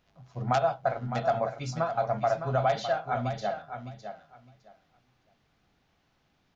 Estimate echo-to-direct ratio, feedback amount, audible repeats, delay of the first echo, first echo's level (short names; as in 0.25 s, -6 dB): -9.0 dB, 18%, 2, 0.609 s, -9.0 dB